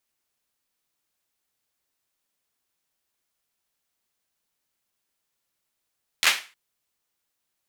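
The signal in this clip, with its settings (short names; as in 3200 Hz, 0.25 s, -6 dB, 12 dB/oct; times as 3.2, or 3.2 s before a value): hand clap length 0.31 s, bursts 4, apart 12 ms, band 2300 Hz, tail 0.33 s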